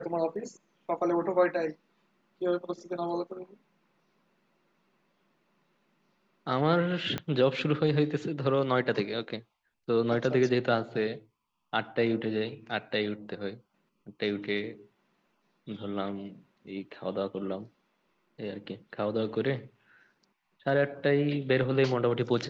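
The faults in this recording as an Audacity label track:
7.180000	7.180000	click −17 dBFS

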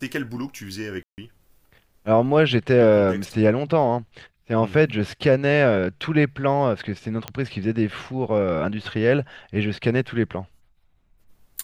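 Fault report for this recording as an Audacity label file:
1.030000	1.180000	drop-out 149 ms
7.280000	7.280000	click −12 dBFS

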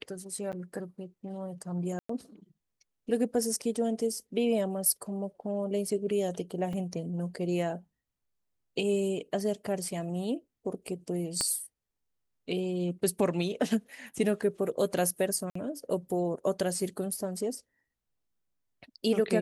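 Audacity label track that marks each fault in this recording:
0.520000	0.530000	drop-out 8.5 ms
1.990000	2.090000	drop-out 104 ms
6.730000	6.730000	drop-out 3.6 ms
11.410000	11.410000	click −15 dBFS
15.500000	15.550000	drop-out 54 ms

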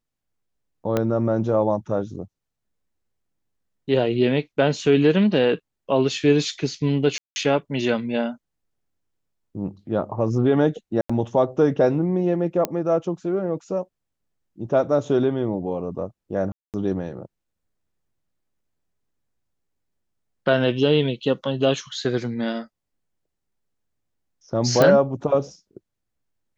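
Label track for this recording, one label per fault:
0.970000	0.970000	click −9 dBFS
7.180000	7.360000	drop-out 180 ms
11.010000	11.100000	drop-out 85 ms
12.650000	12.650000	click −8 dBFS
16.520000	16.740000	drop-out 218 ms
24.820000	24.820000	click −5 dBFS

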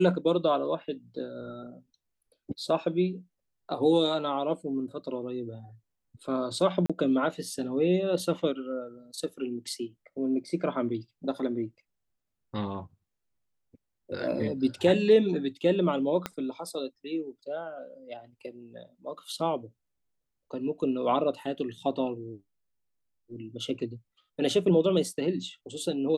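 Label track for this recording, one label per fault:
6.860000	6.900000	drop-out 36 ms
16.260000	16.260000	click −15 dBFS

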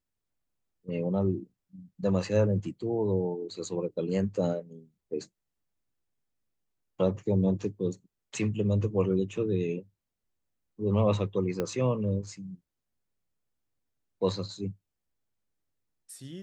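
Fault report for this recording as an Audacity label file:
11.600000	11.600000	click −17 dBFS

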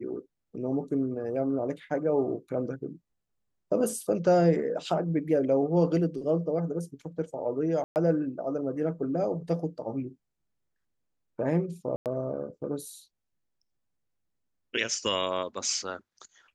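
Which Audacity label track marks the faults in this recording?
7.840000	7.960000	drop-out 119 ms
11.960000	12.060000	drop-out 98 ms

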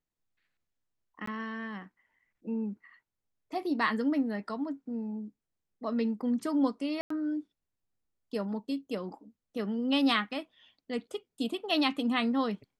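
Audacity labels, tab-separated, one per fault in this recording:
1.260000	1.270000	drop-out 14 ms
7.010000	7.100000	drop-out 94 ms

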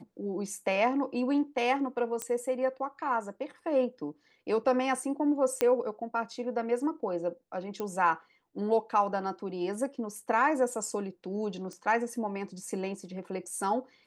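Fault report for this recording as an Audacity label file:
2.220000	2.220000	click −17 dBFS
5.610000	5.610000	click −11 dBFS
7.800000	7.800000	click −21 dBFS
11.730000	11.730000	click −30 dBFS

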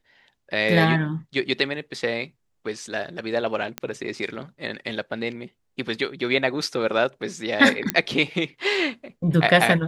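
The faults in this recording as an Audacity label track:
3.780000	3.780000	click −11 dBFS
7.900000	7.900000	click −4 dBFS

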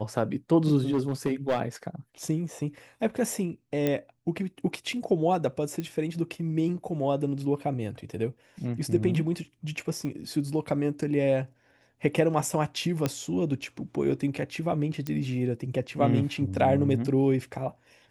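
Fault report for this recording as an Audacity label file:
0.900000	1.600000	clipping −20 dBFS
3.870000	3.870000	click −13 dBFS
5.800000	5.800000	click −20 dBFS
10.050000	10.050000	click −24 dBFS
13.060000	13.060000	click −12 dBFS
15.070000	15.070000	click −17 dBFS

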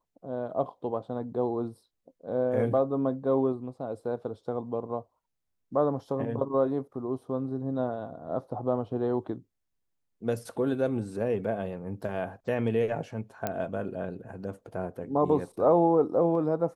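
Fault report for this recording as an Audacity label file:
13.470000	13.470000	click −15 dBFS

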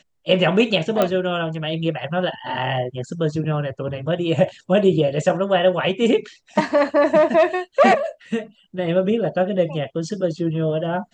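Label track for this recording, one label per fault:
1.020000	1.020000	click −6 dBFS

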